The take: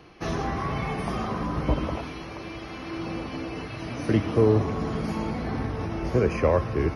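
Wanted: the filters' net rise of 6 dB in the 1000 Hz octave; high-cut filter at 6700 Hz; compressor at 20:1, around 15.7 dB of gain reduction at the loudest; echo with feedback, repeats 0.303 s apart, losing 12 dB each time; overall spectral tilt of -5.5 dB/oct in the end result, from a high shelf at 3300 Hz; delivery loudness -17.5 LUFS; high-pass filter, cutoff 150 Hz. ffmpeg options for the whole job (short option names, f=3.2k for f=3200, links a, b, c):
-af "highpass=150,lowpass=6.7k,equalizer=f=1k:t=o:g=8,highshelf=f=3.3k:g=-7.5,acompressor=threshold=-30dB:ratio=20,aecho=1:1:303|606|909:0.251|0.0628|0.0157,volume=17.5dB"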